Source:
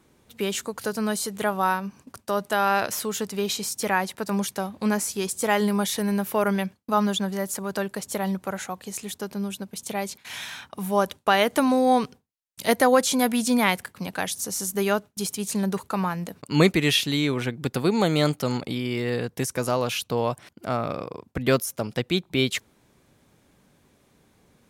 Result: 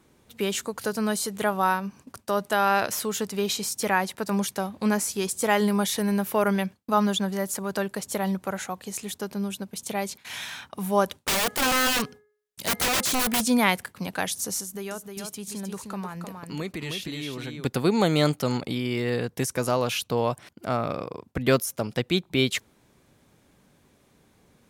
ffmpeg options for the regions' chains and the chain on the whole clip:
-filter_complex "[0:a]asettb=1/sr,asplit=3[s0][s1][s2];[s0]atrim=end=11.204[s3];[s1]atrim=start=11.2:end=13.44,asetpts=PTS-STARTPTS,afade=t=in:d=0.004:c=qsin,afade=t=out:st=2.236:d=0.004:c=qsin,aeval=exprs='(mod(8.41*val(0)+1,2)-1)/8.41':c=same,bandreject=f=419.6:t=h:w=4,bandreject=f=839.2:t=h:w=4,bandreject=f=1258.8:t=h:w=4,bandreject=f=1678.4:t=h:w=4,bandreject=f=2098:t=h:w=4[s4];[s2]atrim=start=13.436[s5];[s3][s4]acrossfade=d=0.004:c1=hsin:c2=qsin[s6];[s6][s5]acrossfade=d=0.004:c1=qsin:c2=hsin,asettb=1/sr,asplit=3[s7][s8][s9];[s7]atrim=end=14.604[s10];[s8]atrim=start=14.6:end=17.65,asetpts=PTS-STARTPTS,afade=t=in:d=0.004:c=qsin,afade=t=out:st=3.046:d=0.004:c=qsin,acompressor=threshold=0.0158:ratio=2.5:attack=3.2:release=140:knee=1:detection=peak,aecho=1:1:309:0.531,atrim=end_sample=134505[s11];[s9]atrim=start=17.646[s12];[s10][s11]acrossfade=d=0.004:c1=hsin:c2=qsin[s13];[s13][s12]acrossfade=d=0.004:c1=qsin:c2=hsin"

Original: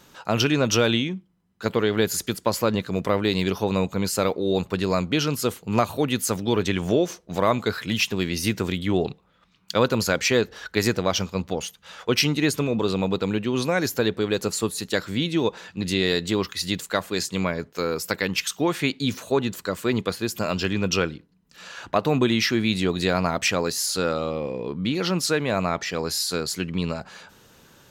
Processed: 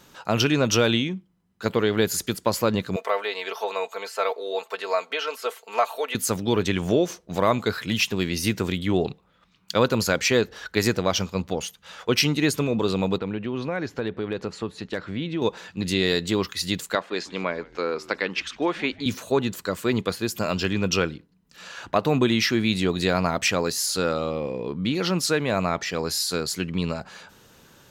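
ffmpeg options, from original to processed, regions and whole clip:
-filter_complex "[0:a]asettb=1/sr,asplit=3[s0][s1][s2];[s0]atrim=end=2.964[s3];[s1]atrim=start=2.96:end=6.15,asetpts=PTS-STARTPTS,afade=t=in:d=0.004:c=qsin,afade=t=out:st=3.186:d=0.004:c=qsin,acrossover=split=3100[s4][s5];[s5]acompressor=threshold=0.00631:ratio=4:attack=1:release=60[s6];[s4][s6]amix=inputs=2:normalize=0,highpass=f=530:w=0.5412,highpass=f=530:w=1.3066,aecho=1:1:4.5:0.7,atrim=end_sample=140679[s7];[s2]atrim=start=6.146[s8];[s3][s7]acrossfade=d=0.004:c1=hsin:c2=qsin[s9];[s9][s8]acrossfade=d=0.004:c1=qsin:c2=hsin,asettb=1/sr,asplit=3[s10][s11][s12];[s10]atrim=end=13.184[s13];[s11]atrim=start=13.18:end=15.42,asetpts=PTS-STARTPTS,afade=t=in:d=0.004:c=qsin,afade=t=out:st=2.236:d=0.004:c=qsin,lowpass=2700,acompressor=threshold=0.0447:ratio=2:attack=3.2:release=140:knee=1:detection=peak,asoftclip=type=hard:threshold=0.141[s14];[s12]atrim=start=15.416[s15];[s13][s14]acrossfade=d=0.004:c1=hsin:c2=qsin[s16];[s16][s15]acrossfade=d=0.004:c1=qsin:c2=hsin,asettb=1/sr,asplit=3[s17][s18][s19];[s17]atrim=end=16.954[s20];[s18]atrim=start=16.95:end=19.06,asetpts=PTS-STARTPTS,afade=t=in:d=0.004:c=qsin,afade=t=out:st=2.106:d=0.004:c=qsin,highpass=290,lowpass=3500,asplit=4[s21][s22][s23][s24];[s22]adelay=151,afreqshift=-120,volume=0.0841[s25];[s23]adelay=302,afreqshift=-240,volume=0.0313[s26];[s24]adelay=453,afreqshift=-360,volume=0.0115[s27];[s21][s25][s26][s27]amix=inputs=4:normalize=0,atrim=end_sample=93051[s28];[s19]atrim=start=19.056[s29];[s20][s28]acrossfade=d=0.004:c1=hsin:c2=qsin[s30];[s30][s29]acrossfade=d=0.004:c1=qsin:c2=hsin"

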